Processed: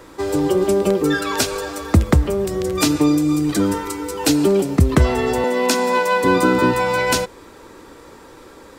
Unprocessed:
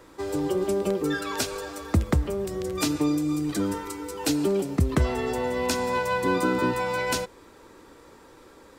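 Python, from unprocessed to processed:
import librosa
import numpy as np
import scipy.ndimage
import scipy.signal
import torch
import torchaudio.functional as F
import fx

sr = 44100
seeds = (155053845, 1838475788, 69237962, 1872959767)

y = fx.steep_highpass(x, sr, hz=190.0, slope=36, at=(5.44, 6.24))
y = y * 10.0 ** (8.5 / 20.0)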